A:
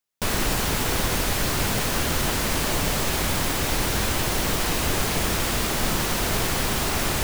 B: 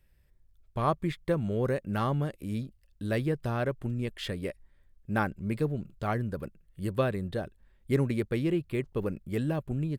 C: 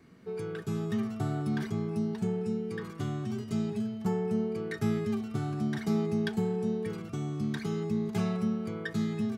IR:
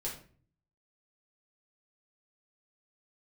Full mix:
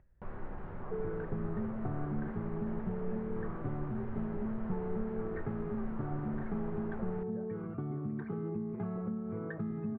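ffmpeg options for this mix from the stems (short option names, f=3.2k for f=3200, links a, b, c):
-filter_complex "[0:a]volume=-17dB,asplit=2[a][b];[b]volume=-7.5dB[c];[1:a]volume=-11.5dB[d];[2:a]acompressor=threshold=-36dB:ratio=6,adelay=650,volume=1.5dB[e];[a][d]amix=inputs=2:normalize=0,acompressor=threshold=-47dB:ratio=6,volume=0dB[f];[3:a]atrim=start_sample=2205[g];[c][g]afir=irnorm=-1:irlink=0[h];[e][f][h]amix=inputs=3:normalize=0,lowpass=f=1.5k:w=0.5412,lowpass=f=1.5k:w=1.3066,acompressor=mode=upward:threshold=-55dB:ratio=2.5"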